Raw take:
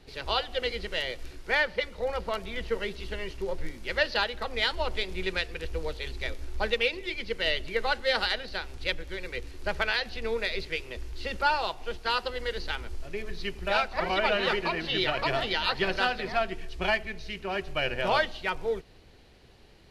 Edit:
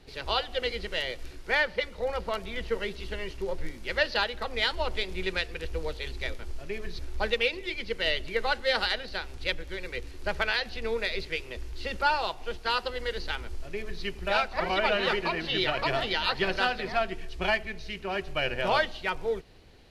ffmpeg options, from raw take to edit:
ffmpeg -i in.wav -filter_complex "[0:a]asplit=3[link_01][link_02][link_03];[link_01]atrim=end=6.392[link_04];[link_02]atrim=start=12.828:end=13.432[link_05];[link_03]atrim=start=6.388[link_06];[link_04][link_05]acrossfade=duration=0.004:curve1=hsin:curve2=hsin[link_07];[link_07][link_06]acrossfade=duration=0.004:curve1=hsin:curve2=hsin" out.wav

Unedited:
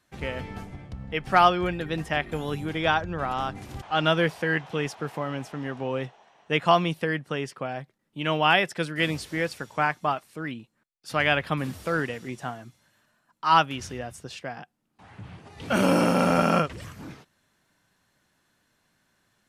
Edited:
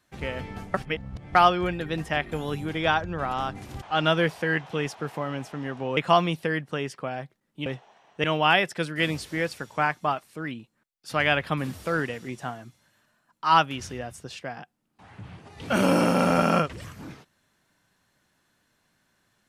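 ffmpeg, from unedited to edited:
ffmpeg -i in.wav -filter_complex "[0:a]asplit=6[link_01][link_02][link_03][link_04][link_05][link_06];[link_01]atrim=end=0.742[link_07];[link_02]atrim=start=0.738:end=1.352,asetpts=PTS-STARTPTS,areverse[link_08];[link_03]atrim=start=1.348:end=5.972[link_09];[link_04]atrim=start=6.548:end=8.242[link_10];[link_05]atrim=start=5.968:end=6.552[link_11];[link_06]atrim=start=8.238[link_12];[link_07][link_08]acrossfade=duration=0.004:curve1=hsin:curve2=hsin[link_13];[link_13][link_09]acrossfade=duration=0.004:curve1=hsin:curve2=hsin[link_14];[link_14][link_10]acrossfade=duration=0.004:curve1=hsin:curve2=hsin[link_15];[link_15][link_11]acrossfade=duration=0.004:curve1=hsin:curve2=hsin[link_16];[link_16][link_12]acrossfade=duration=0.004:curve1=hsin:curve2=hsin" out.wav

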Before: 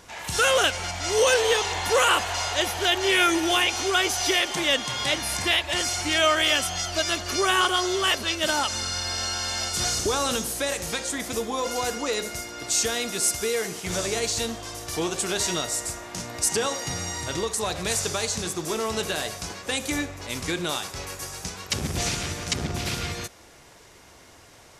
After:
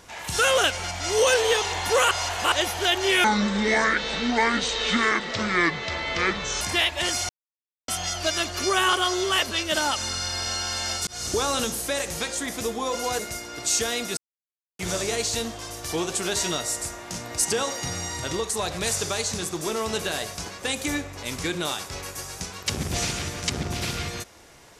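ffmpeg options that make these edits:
ffmpeg -i in.wav -filter_complex "[0:a]asplit=11[link_01][link_02][link_03][link_04][link_05][link_06][link_07][link_08][link_09][link_10][link_11];[link_01]atrim=end=2.112[link_12];[link_02]atrim=start=2.108:end=2.522,asetpts=PTS-STARTPTS,areverse[link_13];[link_03]atrim=start=2.518:end=3.244[link_14];[link_04]atrim=start=3.24:end=5.33,asetpts=PTS-STARTPTS,asetrate=27342,aresample=44100[link_15];[link_05]atrim=start=5.326:end=6.01,asetpts=PTS-STARTPTS,afade=type=out:start_time=0.68:duration=0.004:curve=hsin[link_16];[link_06]atrim=start=6.01:end=6.6,asetpts=PTS-STARTPTS,volume=0[link_17];[link_07]atrim=start=6.6:end=9.79,asetpts=PTS-STARTPTS,afade=type=in:duration=0.004:curve=hsin,afade=type=out:start_time=3.186:duration=0.004:curve=hsin[link_18];[link_08]atrim=start=9.79:end=11.912,asetpts=PTS-STARTPTS,afade=type=in:duration=0.28[link_19];[link_09]atrim=start=12.228:end=13.21,asetpts=PTS-STARTPTS,afade=type=out:start_time=0.978:duration=0.004:curve=hsin[link_20];[link_10]atrim=start=13.21:end=13.83,asetpts=PTS-STARTPTS,volume=0[link_21];[link_11]atrim=start=13.83,asetpts=PTS-STARTPTS,afade=type=in:duration=0.004:curve=hsin[link_22];[link_12][link_13]acrossfade=duration=0.004:curve1=hsin:curve2=hsin[link_23];[link_23][link_14]acrossfade=duration=0.004:curve1=hsin:curve2=hsin[link_24];[link_24][link_15]acrossfade=duration=0.004:curve1=hsin:curve2=hsin[link_25];[link_16][link_17][link_18][link_19]concat=n=4:v=0:a=1[link_26];[link_25][link_26]acrossfade=duration=0.004:curve1=hsin:curve2=hsin[link_27];[link_20][link_21][link_22]concat=n=3:v=0:a=1[link_28];[link_27][link_28]acrossfade=duration=0.004:curve1=hsin:curve2=hsin" out.wav

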